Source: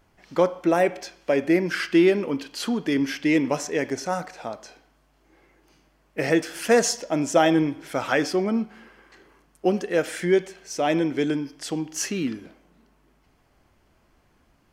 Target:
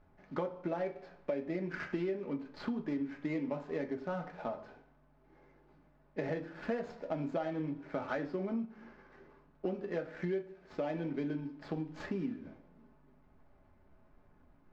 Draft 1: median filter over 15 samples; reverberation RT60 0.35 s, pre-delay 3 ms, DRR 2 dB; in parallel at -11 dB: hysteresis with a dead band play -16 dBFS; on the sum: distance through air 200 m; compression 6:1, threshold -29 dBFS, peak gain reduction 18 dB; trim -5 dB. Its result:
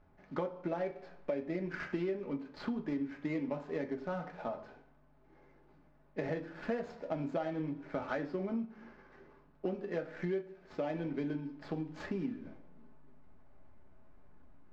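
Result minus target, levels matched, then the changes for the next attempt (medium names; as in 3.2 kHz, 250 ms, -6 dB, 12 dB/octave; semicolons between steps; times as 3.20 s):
hysteresis with a dead band: distortion +6 dB
change: hysteresis with a dead band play -22 dBFS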